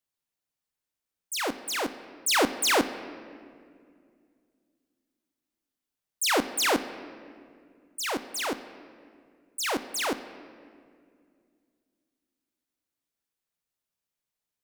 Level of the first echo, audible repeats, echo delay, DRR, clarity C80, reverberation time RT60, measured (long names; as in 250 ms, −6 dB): no echo audible, no echo audible, no echo audible, 11.0 dB, 13.5 dB, 2.2 s